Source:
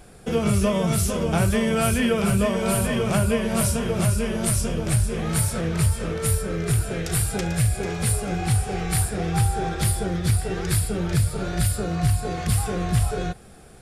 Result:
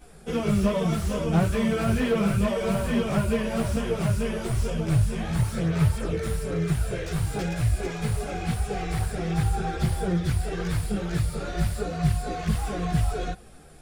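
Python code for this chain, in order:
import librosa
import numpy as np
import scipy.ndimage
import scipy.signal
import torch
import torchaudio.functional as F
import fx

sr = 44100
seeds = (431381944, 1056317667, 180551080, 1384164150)

y = fx.chorus_voices(x, sr, voices=4, hz=0.63, base_ms=16, depth_ms=3.7, mix_pct=65)
y = fx.slew_limit(y, sr, full_power_hz=63.0)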